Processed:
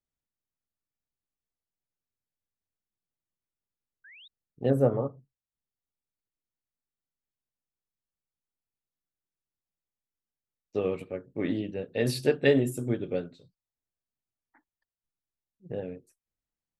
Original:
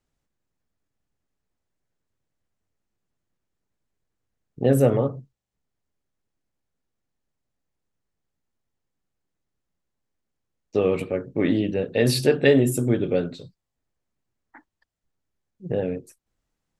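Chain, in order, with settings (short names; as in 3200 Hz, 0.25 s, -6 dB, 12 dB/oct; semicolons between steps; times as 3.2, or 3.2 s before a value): 4.04–4.28 painted sound rise 1500–3900 Hz -36 dBFS; 4.7–5.18 resonant high shelf 1700 Hz -11.5 dB, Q 1.5; upward expander 1.5:1, over -35 dBFS; gain -4.5 dB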